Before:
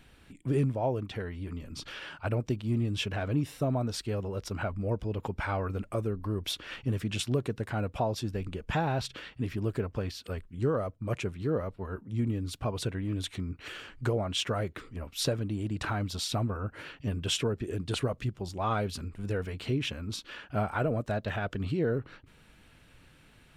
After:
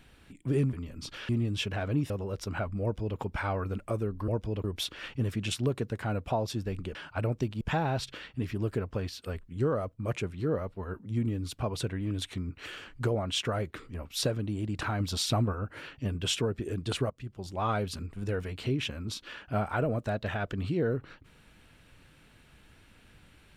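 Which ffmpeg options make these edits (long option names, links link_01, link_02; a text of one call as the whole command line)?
ffmpeg -i in.wav -filter_complex "[0:a]asplit=11[link_01][link_02][link_03][link_04][link_05][link_06][link_07][link_08][link_09][link_10][link_11];[link_01]atrim=end=0.732[link_12];[link_02]atrim=start=1.468:end=2.032[link_13];[link_03]atrim=start=2.688:end=3.502[link_14];[link_04]atrim=start=4.138:end=6.322[link_15];[link_05]atrim=start=4.858:end=5.222[link_16];[link_06]atrim=start=6.318:end=8.632[link_17];[link_07]atrim=start=2.028:end=2.692[link_18];[link_08]atrim=start=8.628:end=16.022[link_19];[link_09]atrim=start=16.018:end=16.552,asetpts=PTS-STARTPTS,volume=3dB[link_20];[link_10]atrim=start=16.548:end=18.12,asetpts=PTS-STARTPTS,afade=type=out:start_time=1.568:duration=0.004:curve=hsin:silence=0.125893[link_21];[link_11]atrim=start=18.12,asetpts=PTS-STARTPTS,afade=type=in:duration=0.5:silence=0.125893[link_22];[link_12][link_13]acrossfade=duration=0.004:curve1=hsin:curve2=hsin[link_23];[link_23][link_14]acrossfade=duration=0.004:curve1=hsin:curve2=hsin[link_24];[link_24][link_15]acrossfade=duration=0.004:curve1=hsin:curve2=hsin[link_25];[link_25][link_16]acrossfade=duration=0.004:curve1=hsin:curve2=hsin[link_26];[link_26][link_17]acrossfade=duration=0.004:curve1=hsin:curve2=hsin[link_27];[link_27][link_18]acrossfade=duration=0.004:curve1=hsin:curve2=hsin[link_28];[link_28][link_19]acrossfade=duration=0.004:curve1=hsin:curve2=hsin[link_29];[link_29][link_20]acrossfade=duration=0.004:curve1=hsin:curve2=hsin[link_30];[link_21][link_22]concat=n=2:v=0:a=1[link_31];[link_30][link_31]acrossfade=duration=0.004:curve1=hsin:curve2=hsin" out.wav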